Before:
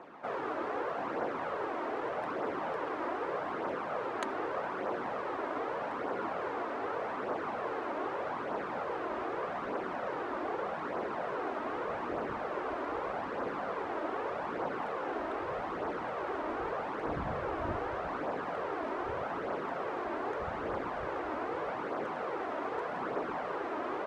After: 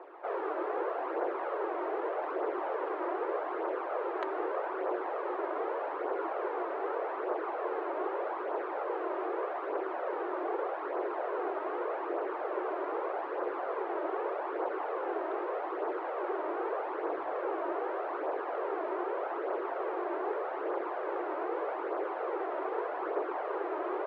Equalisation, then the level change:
elliptic high-pass filter 350 Hz, stop band 40 dB
high-frequency loss of the air 270 metres
low-shelf EQ 460 Hz +9.5 dB
0.0 dB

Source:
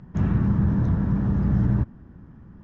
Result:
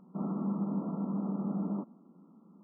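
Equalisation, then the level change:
dynamic equaliser 670 Hz, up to +4 dB, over −50 dBFS, Q 2
linear-phase brick-wall band-pass 170–1,400 Hz
−7.0 dB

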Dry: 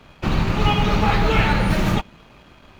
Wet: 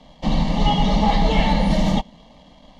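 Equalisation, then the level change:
Butterworth band-reject 2,500 Hz, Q 6.1
low-pass filter 6,100 Hz 12 dB per octave
phaser with its sweep stopped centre 380 Hz, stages 6
+3.5 dB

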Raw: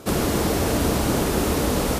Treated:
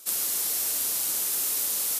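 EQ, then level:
first difference
low-shelf EQ 76 Hz +7.5 dB
high-shelf EQ 4,500 Hz +6.5 dB
−1.5 dB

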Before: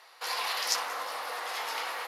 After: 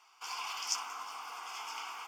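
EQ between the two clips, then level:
high-shelf EQ 6,000 Hz +5 dB
phaser with its sweep stopped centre 2,700 Hz, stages 8
−5.5 dB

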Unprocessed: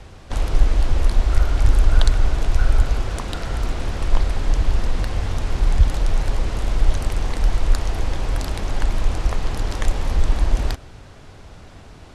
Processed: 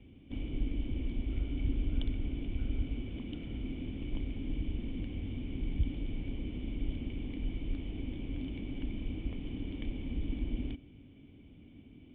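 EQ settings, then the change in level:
formant resonators in series i
high-pass filter 56 Hz 6 dB per octave
0.0 dB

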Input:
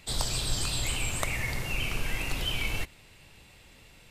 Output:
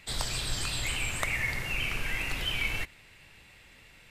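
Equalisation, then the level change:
parametric band 1,900 Hz +8 dB 1.2 octaves
−3.5 dB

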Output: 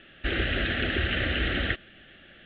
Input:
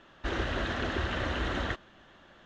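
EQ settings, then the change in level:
low-pass filter 3,300 Hz 24 dB per octave
high-shelf EQ 2,300 Hz +12 dB
phaser with its sweep stopped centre 2,400 Hz, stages 4
+4.5 dB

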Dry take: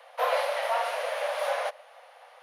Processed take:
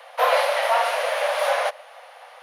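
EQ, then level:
low-shelf EQ 340 Hz −7.5 dB
+8.5 dB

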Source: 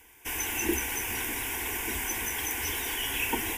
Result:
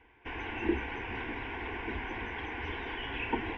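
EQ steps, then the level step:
Gaussian smoothing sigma 3.4 samples
0.0 dB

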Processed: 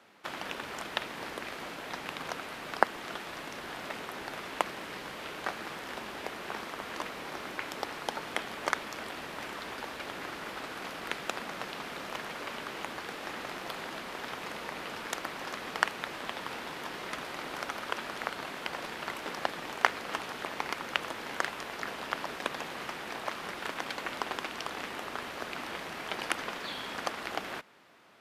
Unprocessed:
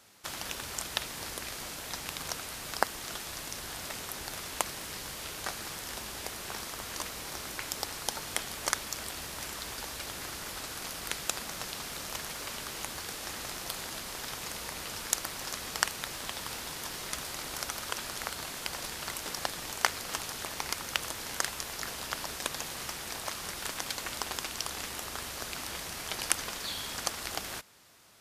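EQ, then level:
three-way crossover with the lows and the highs turned down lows −21 dB, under 190 Hz, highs −18 dB, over 3,200 Hz
low-shelf EQ 190 Hz +6.5 dB
+3.5 dB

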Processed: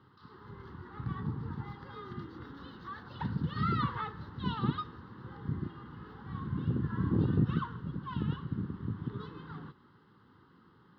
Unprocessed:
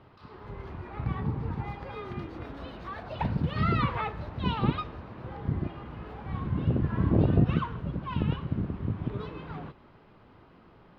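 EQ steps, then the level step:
high-pass filter 110 Hz 12 dB per octave
phaser with its sweep stopped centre 2,400 Hz, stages 6
−2.5 dB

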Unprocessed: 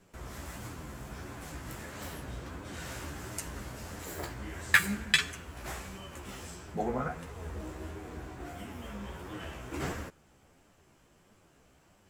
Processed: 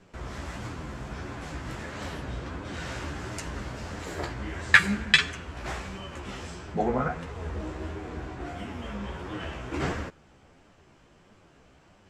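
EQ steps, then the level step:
low-pass filter 5,300 Hz 12 dB per octave
+6.0 dB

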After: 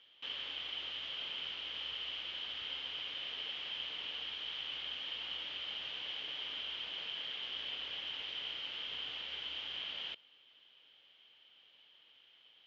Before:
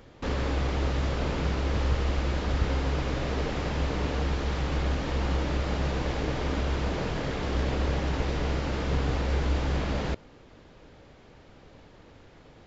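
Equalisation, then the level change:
resonant band-pass 3,100 Hz, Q 14
high-frequency loss of the air 92 metres
+12.5 dB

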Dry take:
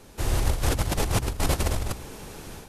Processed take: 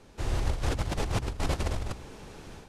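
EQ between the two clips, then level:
high-frequency loss of the air 62 metres
−4.5 dB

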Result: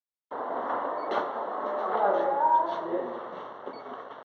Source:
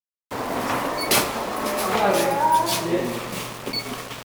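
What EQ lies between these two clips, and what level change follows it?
moving average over 18 samples
high-pass filter 540 Hz 12 dB per octave
high-frequency loss of the air 280 metres
0.0 dB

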